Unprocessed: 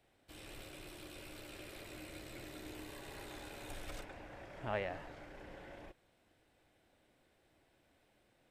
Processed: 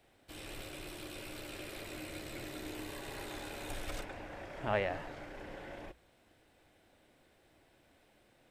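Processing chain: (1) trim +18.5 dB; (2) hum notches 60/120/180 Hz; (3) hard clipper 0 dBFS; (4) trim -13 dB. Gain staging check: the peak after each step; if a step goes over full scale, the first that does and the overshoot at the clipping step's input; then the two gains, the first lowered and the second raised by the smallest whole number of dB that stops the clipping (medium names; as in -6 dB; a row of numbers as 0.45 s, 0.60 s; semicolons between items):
-5.5 dBFS, -5.5 dBFS, -5.5 dBFS, -18.5 dBFS; nothing clips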